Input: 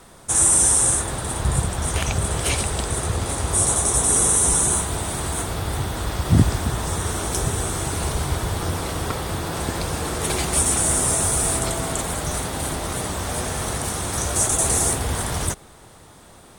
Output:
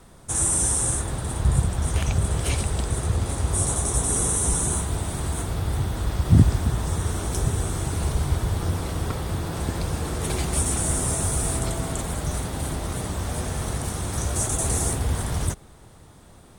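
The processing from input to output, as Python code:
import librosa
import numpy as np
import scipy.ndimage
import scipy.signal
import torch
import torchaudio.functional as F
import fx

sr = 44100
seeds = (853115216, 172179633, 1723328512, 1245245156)

y = fx.low_shelf(x, sr, hz=270.0, db=9.0)
y = y * librosa.db_to_amplitude(-6.5)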